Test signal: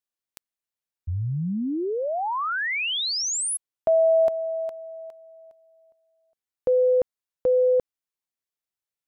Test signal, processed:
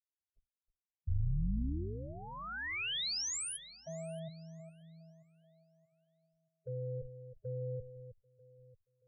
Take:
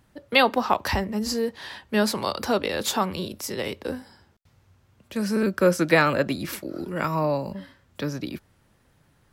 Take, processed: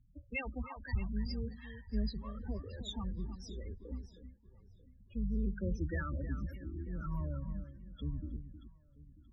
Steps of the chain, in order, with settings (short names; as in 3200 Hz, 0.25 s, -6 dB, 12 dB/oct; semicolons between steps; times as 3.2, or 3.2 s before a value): octaver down 2 oct, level -1 dB; loudest bins only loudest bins 8; in parallel at +1 dB: compressor, threshold -32 dBFS; on the sum: passive tone stack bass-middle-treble 6-0-2; on a send: echo with dull and thin repeats by turns 0.314 s, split 2000 Hz, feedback 58%, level -11 dB; on the sum: low-pass opened by the level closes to 2400 Hz, open at -35.5 dBFS; gain +2.5 dB